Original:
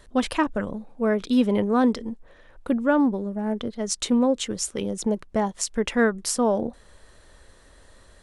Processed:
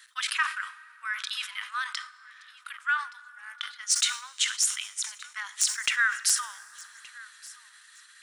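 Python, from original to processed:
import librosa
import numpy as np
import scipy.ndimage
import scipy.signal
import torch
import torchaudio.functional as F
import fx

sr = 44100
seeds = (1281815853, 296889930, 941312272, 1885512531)

p1 = scipy.signal.sosfilt(scipy.signal.butter(8, 1300.0, 'highpass', fs=sr, output='sos'), x)
p2 = fx.level_steps(p1, sr, step_db=10)
p3 = p1 + (p2 * 10.0 ** (-0.5 / 20.0))
p4 = 10.0 ** (-11.0 / 20.0) * (np.abs((p3 / 10.0 ** (-11.0 / 20.0) + 3.0) % 4.0 - 2.0) - 1.0)
p5 = p4 + fx.echo_feedback(p4, sr, ms=1172, feedback_pct=30, wet_db=-22.0, dry=0)
p6 = fx.rev_plate(p5, sr, seeds[0], rt60_s=4.1, hf_ratio=0.45, predelay_ms=0, drr_db=16.0)
y = fx.sustainer(p6, sr, db_per_s=130.0)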